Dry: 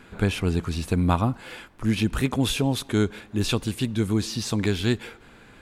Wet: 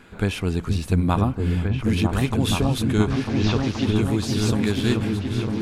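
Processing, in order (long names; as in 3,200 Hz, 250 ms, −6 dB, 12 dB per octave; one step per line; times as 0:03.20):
0:03.10–0:03.92: linear delta modulator 32 kbit/s, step −29.5 dBFS
echo whose low-pass opens from repeat to repeat 475 ms, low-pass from 200 Hz, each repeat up 2 octaves, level 0 dB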